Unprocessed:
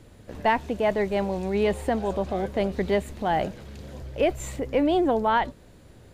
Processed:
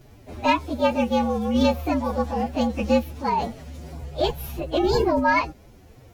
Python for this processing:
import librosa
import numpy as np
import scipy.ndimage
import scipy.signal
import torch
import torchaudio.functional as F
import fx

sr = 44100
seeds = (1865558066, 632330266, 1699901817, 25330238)

y = fx.partial_stretch(x, sr, pct=114)
y = fx.pitch_keep_formants(y, sr, semitones=3.5)
y = y * 10.0 ** (5.0 / 20.0)